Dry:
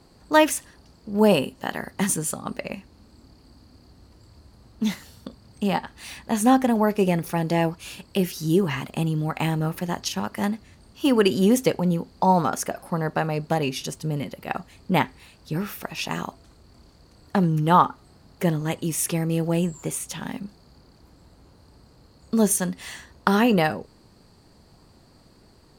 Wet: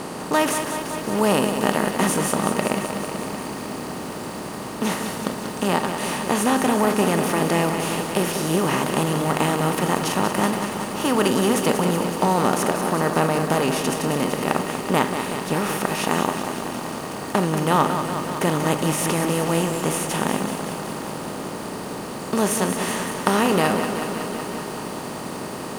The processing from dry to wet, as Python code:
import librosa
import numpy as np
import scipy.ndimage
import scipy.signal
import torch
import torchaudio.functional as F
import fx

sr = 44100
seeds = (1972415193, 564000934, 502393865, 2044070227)

y = fx.bin_compress(x, sr, power=0.4)
y = fx.echo_crushed(y, sr, ms=188, feedback_pct=80, bits=6, wet_db=-8.0)
y = F.gain(torch.from_numpy(y), -6.0).numpy()